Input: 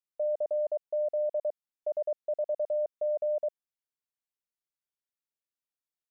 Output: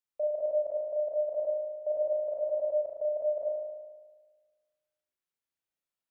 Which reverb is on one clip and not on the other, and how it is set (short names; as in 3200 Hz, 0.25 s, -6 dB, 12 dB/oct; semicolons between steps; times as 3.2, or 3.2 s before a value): spring tank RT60 1.4 s, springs 36 ms, chirp 50 ms, DRR -2.5 dB; gain -1.5 dB